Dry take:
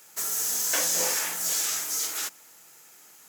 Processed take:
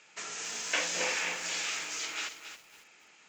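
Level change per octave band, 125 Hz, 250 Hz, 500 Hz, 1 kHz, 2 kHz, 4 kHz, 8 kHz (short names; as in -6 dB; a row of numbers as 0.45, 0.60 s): -4.0, -3.0, -3.0, -2.5, +2.0, -3.0, -10.5 dB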